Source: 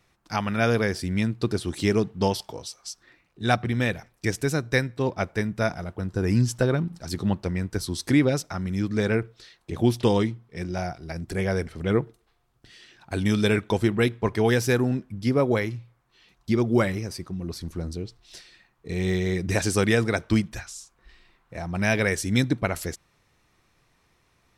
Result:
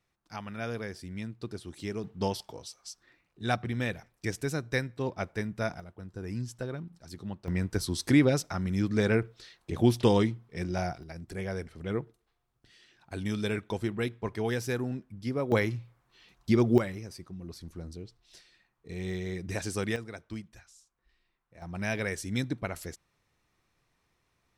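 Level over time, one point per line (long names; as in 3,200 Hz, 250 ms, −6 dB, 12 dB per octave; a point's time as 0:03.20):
−13.5 dB
from 0:02.04 −7 dB
from 0:05.80 −14 dB
from 0:07.48 −2 dB
from 0:11.03 −9.5 dB
from 0:15.52 −1 dB
from 0:16.78 −10 dB
from 0:19.96 −18 dB
from 0:21.62 −9 dB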